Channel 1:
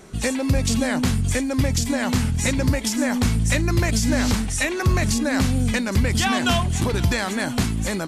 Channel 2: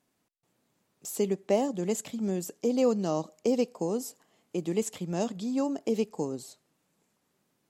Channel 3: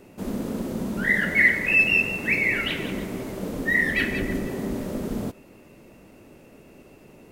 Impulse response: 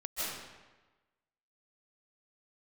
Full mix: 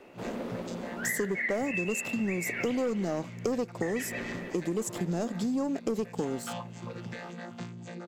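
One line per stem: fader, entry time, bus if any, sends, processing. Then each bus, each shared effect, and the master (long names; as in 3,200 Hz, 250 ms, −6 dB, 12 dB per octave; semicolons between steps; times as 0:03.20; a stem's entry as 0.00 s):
−7.0 dB, 0.00 s, no send, no echo send, channel vocoder with a chord as carrier bare fifth, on A#2; high-pass filter 600 Hz 6 dB per octave
+1.5 dB, 0.00 s, no send, no echo send, parametric band 2,800 Hz −6.5 dB 1.4 octaves; leveller curve on the samples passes 2
+1.5 dB, 0.00 s, muted 0:03.28–0:03.82, no send, echo send −21 dB, three-way crossover with the lows and the highs turned down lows −14 dB, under 380 Hz, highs −16 dB, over 4,200 Hz; automatic ducking −8 dB, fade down 1.20 s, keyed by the second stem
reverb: not used
echo: repeating echo 283 ms, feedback 47%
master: downward compressor, threshold −28 dBFS, peak gain reduction 11.5 dB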